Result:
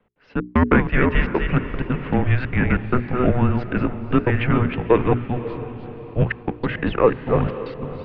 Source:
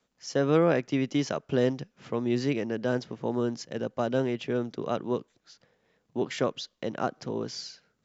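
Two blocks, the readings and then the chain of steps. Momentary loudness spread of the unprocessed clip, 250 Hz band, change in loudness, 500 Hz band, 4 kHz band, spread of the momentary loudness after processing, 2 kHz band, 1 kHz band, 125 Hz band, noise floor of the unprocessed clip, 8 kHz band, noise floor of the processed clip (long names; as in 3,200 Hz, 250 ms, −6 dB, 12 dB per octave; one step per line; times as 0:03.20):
10 LU, +8.0 dB, +8.5 dB, +6.0 dB, 0.0 dB, 12 LU, +13.0 dB, +10.0 dB, +13.5 dB, −76 dBFS, can't be measured, −41 dBFS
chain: delay that plays each chunk backwards 218 ms, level −6 dB
in parallel at −5.5 dB: soft clipping −25.5 dBFS, distortion −9 dB
on the sum: automatic gain control gain up to 11 dB
background noise brown −54 dBFS
gate pattern "x.xxx..x.xxxxxx" 190 BPM −60 dB
hollow resonant body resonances 210/710 Hz, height 9 dB, ringing for 25 ms
on a send: feedback delay with all-pass diffusion 553 ms, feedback 45%, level −12 dB
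on the sum: single-sideband voice off tune −250 Hz 330–3,100 Hz
mains-hum notches 60/120/180/240/300/360/420 Hz
dynamic equaliser 1,700 Hz, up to +7 dB, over −40 dBFS, Q 1.4
level −1 dB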